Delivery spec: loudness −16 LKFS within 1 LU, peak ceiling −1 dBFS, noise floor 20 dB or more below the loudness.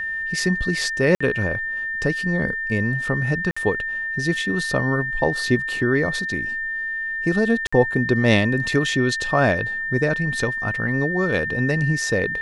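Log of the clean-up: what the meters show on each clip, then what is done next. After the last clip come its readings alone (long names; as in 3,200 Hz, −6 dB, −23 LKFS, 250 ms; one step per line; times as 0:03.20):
number of dropouts 3; longest dropout 55 ms; interfering tone 1,800 Hz; level of the tone −24 dBFS; integrated loudness −21.5 LKFS; sample peak −3.0 dBFS; target loudness −16.0 LKFS
→ repair the gap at 0:01.15/0:03.51/0:07.67, 55 ms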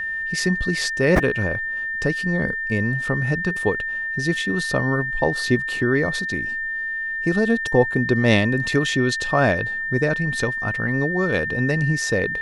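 number of dropouts 0; interfering tone 1,800 Hz; level of the tone −24 dBFS
→ notch filter 1,800 Hz, Q 30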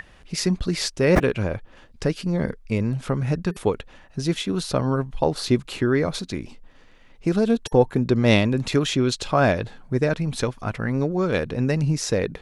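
interfering tone none found; integrated loudness −23.0 LKFS; sample peak −3.5 dBFS; target loudness −16.0 LKFS
→ level +7 dB
brickwall limiter −1 dBFS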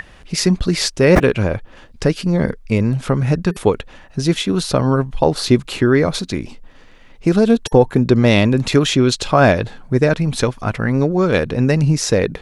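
integrated loudness −16.5 LKFS; sample peak −1.0 dBFS; background noise floor −43 dBFS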